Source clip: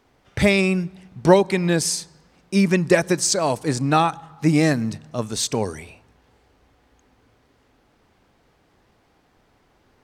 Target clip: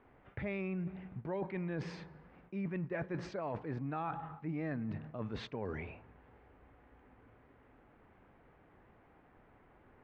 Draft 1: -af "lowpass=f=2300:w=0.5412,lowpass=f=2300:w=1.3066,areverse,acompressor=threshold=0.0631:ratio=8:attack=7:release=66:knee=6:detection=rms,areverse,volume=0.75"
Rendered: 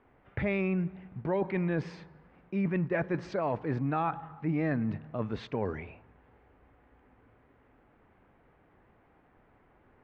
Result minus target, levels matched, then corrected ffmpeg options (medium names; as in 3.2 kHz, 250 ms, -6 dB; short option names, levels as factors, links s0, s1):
compression: peak gain reduction -8.5 dB
-af "lowpass=f=2300:w=0.5412,lowpass=f=2300:w=1.3066,areverse,acompressor=threshold=0.02:ratio=8:attack=7:release=66:knee=6:detection=rms,areverse,volume=0.75"